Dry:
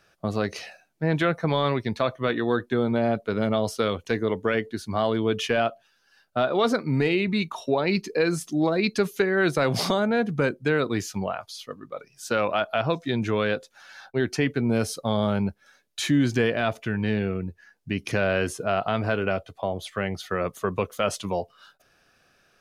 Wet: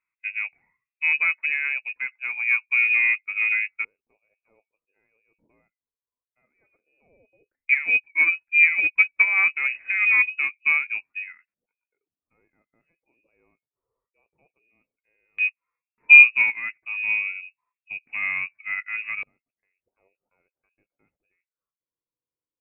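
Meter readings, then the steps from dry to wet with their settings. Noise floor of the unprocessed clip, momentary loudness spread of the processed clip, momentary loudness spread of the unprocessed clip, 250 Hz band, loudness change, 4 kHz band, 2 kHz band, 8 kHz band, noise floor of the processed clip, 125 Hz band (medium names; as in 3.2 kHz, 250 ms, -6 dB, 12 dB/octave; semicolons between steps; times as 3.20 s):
-65 dBFS, 16 LU, 8 LU, under -30 dB, +6.5 dB, under -10 dB, +11.5 dB, under -30 dB, under -85 dBFS, under -35 dB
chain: self-modulated delay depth 0.098 ms; harmonic-percussive split harmonic +4 dB; peaking EQ 230 Hz +14 dB 2.5 oct; frequency inversion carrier 2.7 kHz; in parallel at -10 dB: saturation -4.5 dBFS, distortion -15 dB; on the sum: LFO low-pass square 0.13 Hz 500–2000 Hz; upward expansion 2.5:1, over -16 dBFS; trim -9 dB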